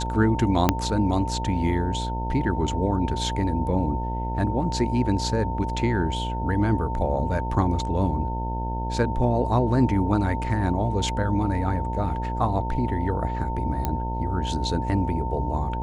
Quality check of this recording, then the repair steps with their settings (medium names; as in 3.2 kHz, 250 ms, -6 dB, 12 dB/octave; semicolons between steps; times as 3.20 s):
buzz 60 Hz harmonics 17 -29 dBFS
whine 900 Hz -31 dBFS
0.69 s: pop -3 dBFS
13.85 s: pop -11 dBFS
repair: de-click; band-stop 900 Hz, Q 30; de-hum 60 Hz, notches 17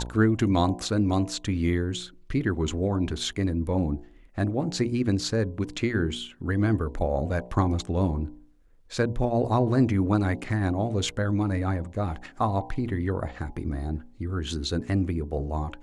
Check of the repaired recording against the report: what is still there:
0.69 s: pop